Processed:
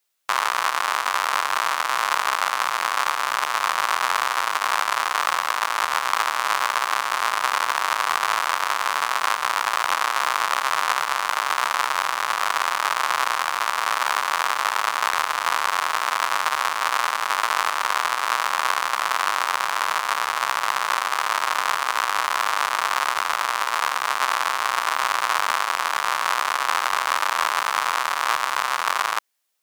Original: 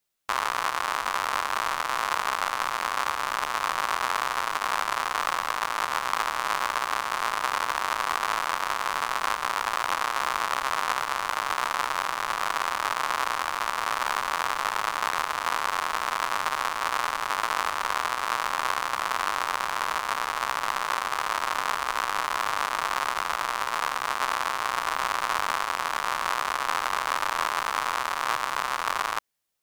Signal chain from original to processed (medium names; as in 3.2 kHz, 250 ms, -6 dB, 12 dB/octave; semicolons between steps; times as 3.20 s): high-pass 650 Hz 6 dB/octave; trim +6 dB